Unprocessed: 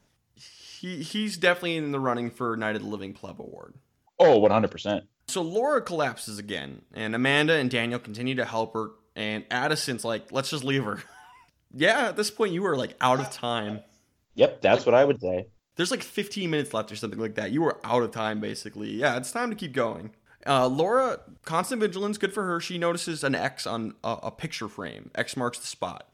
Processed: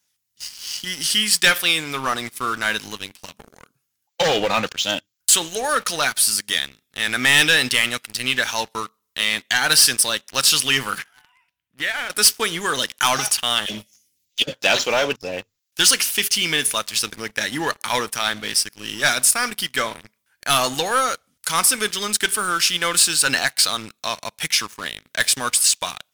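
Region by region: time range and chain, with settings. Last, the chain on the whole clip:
0:10.98–0:12.10: high shelf with overshoot 3,800 Hz −12.5 dB, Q 1.5 + downward compressor 4 to 1, threshold −31 dBFS + hum removal 244.2 Hz, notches 4
0:13.66–0:14.53: all-pass dispersion lows, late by 47 ms, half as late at 450 Hz + compressor whose output falls as the input rises −23 dBFS, ratio −0.5 + Butterworth band-reject 1,100 Hz, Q 0.61
whole clip: spectral tilt +4 dB per octave; leveller curve on the samples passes 3; parametric band 520 Hz −8 dB 2.1 octaves; level −1.5 dB

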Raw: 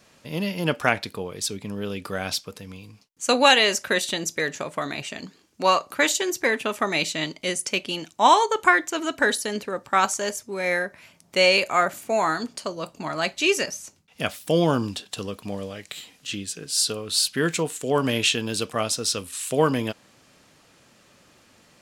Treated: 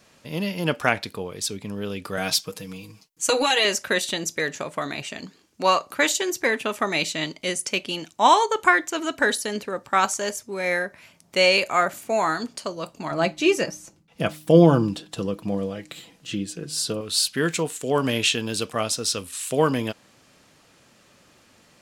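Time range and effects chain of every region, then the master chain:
0:02.17–0:03.65: high-shelf EQ 6,700 Hz +6 dB + downward compressor 10 to 1, threshold −17 dBFS + comb filter 6.3 ms, depth 97%
0:13.11–0:17.01: tilt shelving filter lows +5.5 dB, about 1,100 Hz + comb filter 6 ms, depth 46% + hum removal 153.4 Hz, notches 2
whole clip: no processing

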